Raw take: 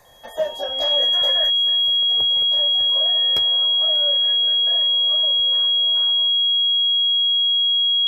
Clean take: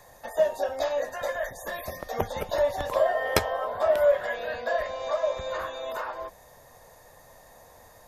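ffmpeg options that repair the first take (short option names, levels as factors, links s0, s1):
-af "bandreject=f=3300:w=30,asetnsamples=n=441:p=0,asendcmd='1.5 volume volume 12dB',volume=1"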